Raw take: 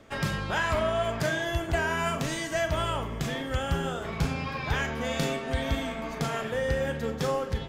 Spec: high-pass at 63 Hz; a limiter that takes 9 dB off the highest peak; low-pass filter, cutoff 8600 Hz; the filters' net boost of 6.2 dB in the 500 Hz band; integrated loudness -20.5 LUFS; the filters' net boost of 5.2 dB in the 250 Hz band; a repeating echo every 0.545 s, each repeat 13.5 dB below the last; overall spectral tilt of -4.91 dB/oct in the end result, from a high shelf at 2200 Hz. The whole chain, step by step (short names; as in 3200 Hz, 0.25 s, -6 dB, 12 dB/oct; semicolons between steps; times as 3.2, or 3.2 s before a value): HPF 63 Hz; LPF 8600 Hz; bell 250 Hz +5 dB; bell 500 Hz +6.5 dB; high shelf 2200 Hz +5 dB; limiter -19.5 dBFS; feedback echo 0.545 s, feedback 21%, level -13.5 dB; gain +8 dB